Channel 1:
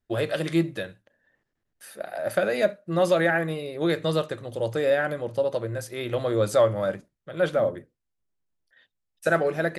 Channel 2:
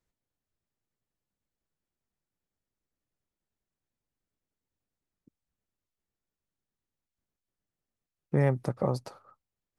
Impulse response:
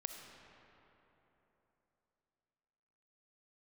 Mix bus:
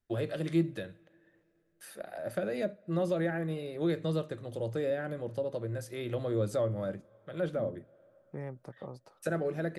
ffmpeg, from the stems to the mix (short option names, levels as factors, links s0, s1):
-filter_complex "[0:a]volume=0.631,asplit=2[s0][s1];[s1]volume=0.0668[s2];[1:a]bass=f=250:g=-4,treble=f=4000:g=-4,volume=0.224[s3];[2:a]atrim=start_sample=2205[s4];[s2][s4]afir=irnorm=-1:irlink=0[s5];[s0][s3][s5]amix=inputs=3:normalize=0,acrossover=split=430[s6][s7];[s7]acompressor=threshold=0.00501:ratio=2[s8];[s6][s8]amix=inputs=2:normalize=0"